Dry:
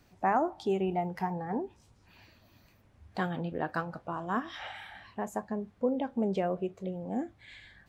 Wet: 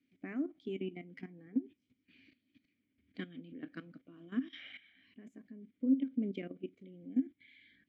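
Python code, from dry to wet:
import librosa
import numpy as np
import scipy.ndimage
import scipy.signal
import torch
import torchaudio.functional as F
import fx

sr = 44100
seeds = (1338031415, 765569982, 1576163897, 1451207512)

y = fx.level_steps(x, sr, step_db=15)
y = fx.vowel_filter(y, sr, vowel='i')
y = F.gain(torch.from_numpy(y), 8.5).numpy()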